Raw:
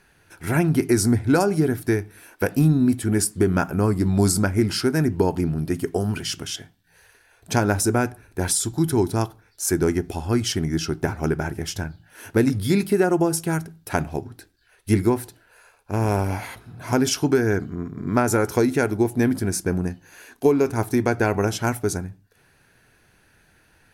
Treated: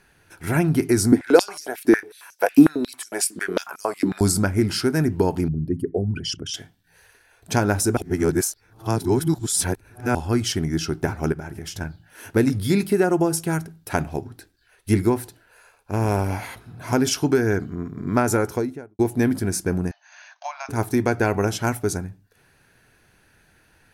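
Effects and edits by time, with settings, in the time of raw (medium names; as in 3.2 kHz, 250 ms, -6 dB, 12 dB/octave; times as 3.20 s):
1.12–4.21 s: step-sequenced high-pass 11 Hz 280–5800 Hz
5.48–6.54 s: resonances exaggerated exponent 2
7.97–10.15 s: reverse
11.32–11.81 s: compression 5:1, threshold -29 dBFS
18.29–18.99 s: studio fade out
19.91–20.69 s: brick-wall FIR band-pass 580–6600 Hz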